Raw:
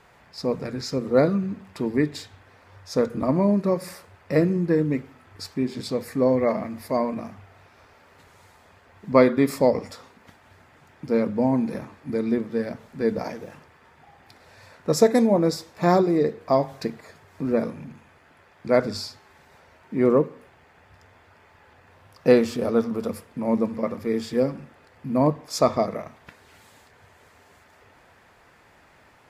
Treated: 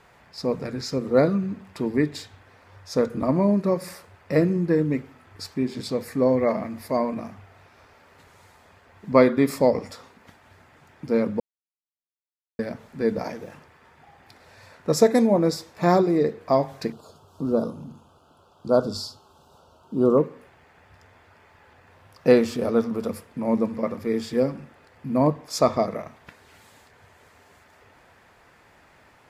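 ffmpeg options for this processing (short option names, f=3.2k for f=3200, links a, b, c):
-filter_complex "[0:a]asettb=1/sr,asplit=3[a][b][c];[a]atrim=end=16.924[d];[b]atrim=start=16.92:end=20.18,asetpts=PTS-STARTPTS,afade=t=in:d=0.004:c=qsin,afade=t=out:st=3.256:d=0.004:c=qsin,asuperstop=centerf=2000:order=8:qfactor=1.4[e];[c]atrim=start=20.176[f];[d][e]acrossfade=d=0.004:c1=hsin:c2=qsin[g];[g][f]acrossfade=d=0.004:c1=qsin:c2=hsin,asplit=3[h][i][j];[h]atrim=end=11.4,asetpts=PTS-STARTPTS,afade=t=out:st=11.396:d=0.004:c=hsin[k];[i]atrim=start=11.4:end=12.59,asetpts=PTS-STARTPTS,volume=0[l];[j]atrim=start=12.59,asetpts=PTS-STARTPTS,afade=t=in:d=0.004:c=hsin[m];[k][l][m]concat=n=3:v=0:a=1"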